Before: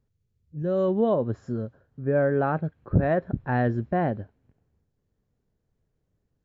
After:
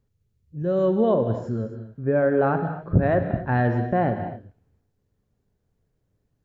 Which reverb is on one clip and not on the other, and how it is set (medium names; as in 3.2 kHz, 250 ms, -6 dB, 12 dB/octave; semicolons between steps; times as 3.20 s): gated-style reverb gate 290 ms flat, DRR 6.5 dB; trim +2 dB